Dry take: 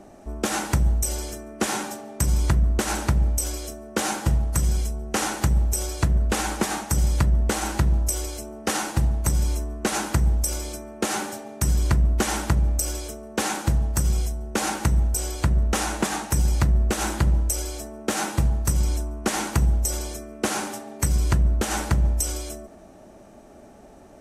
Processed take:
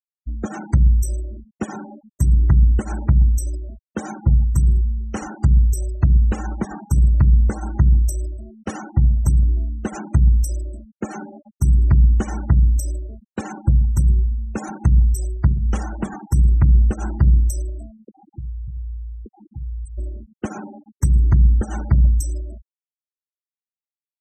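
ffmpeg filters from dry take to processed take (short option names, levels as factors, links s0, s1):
-filter_complex "[0:a]asettb=1/sr,asplit=3[s0][s1][s2];[s0]atrim=end=15.484[s3];[s1]atrim=start=15.48:end=16.25,asetpts=PTS-STARTPTS,afade=t=in:d=0.004:c=qsin,afade=t=out:st=0.766:d=0.004:c=qsin,bandreject=f=60:t=h:w=6,bandreject=f=120:t=h:w=6,bandreject=f=180:t=h:w=6,bandreject=f=240:t=h:w=6,bandreject=f=300:t=h:w=6,bandreject=f=360:t=h:w=6,bandreject=f=420:t=h:w=6,bandreject=f=480:t=h:w=6,bandreject=f=540:t=h:w=6[s4];[s2]atrim=start=16.246[s5];[s3][s4]acrossfade=d=0.004:c1=hsin:c2=qsin[s6];[s6][s5]acrossfade=d=0.004:c1=qsin:c2=hsin,asettb=1/sr,asplit=3[s7][s8][s9];[s7]atrim=end=17.924[s10];[s8]atrim=start=17.92:end=19.98,asetpts=PTS-STARTPTS,afade=t=in:d=0.004:c=qsin,afade=t=out:st=2.056:d=0.004:c=qsin,acompressor=threshold=0.02:ratio=5:attack=3.2:release=140:knee=1:detection=peak[s11];[s9]atrim=start=19.976[s12];[s10][s11]acrossfade=d=0.004:c1=hsin:c2=qsin[s13];[s13][s12]acrossfade=d=0.004:c1=qsin:c2=hsin,agate=range=0.0224:threshold=0.0158:ratio=3:detection=peak,afftfilt=real='re*gte(hypot(re,im),0.0708)':imag='im*gte(hypot(re,im),0.0708)':win_size=1024:overlap=0.75,bass=f=250:g=12,treble=f=4000:g=-1,volume=0.562"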